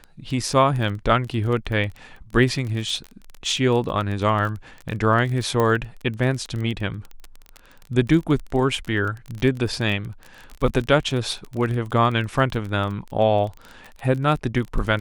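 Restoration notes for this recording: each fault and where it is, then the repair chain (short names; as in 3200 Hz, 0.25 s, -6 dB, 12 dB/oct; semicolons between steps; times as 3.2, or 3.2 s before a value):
crackle 22/s -27 dBFS
5.6 pop -10 dBFS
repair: de-click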